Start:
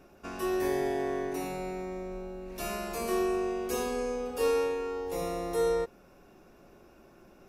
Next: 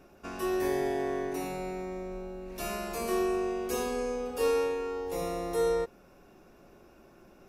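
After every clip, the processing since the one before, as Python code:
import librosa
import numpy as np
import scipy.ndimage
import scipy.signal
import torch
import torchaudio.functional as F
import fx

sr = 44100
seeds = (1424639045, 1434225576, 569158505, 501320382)

y = x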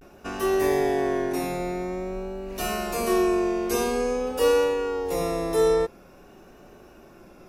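y = fx.vibrato(x, sr, rate_hz=0.49, depth_cents=65.0)
y = F.gain(torch.from_numpy(y), 7.0).numpy()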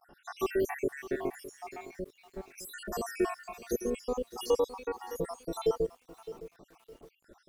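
y = fx.spec_dropout(x, sr, seeds[0], share_pct=77)
y = fx.echo_crushed(y, sr, ms=612, feedback_pct=35, bits=8, wet_db=-14.5)
y = F.gain(torch.from_numpy(y), -3.5).numpy()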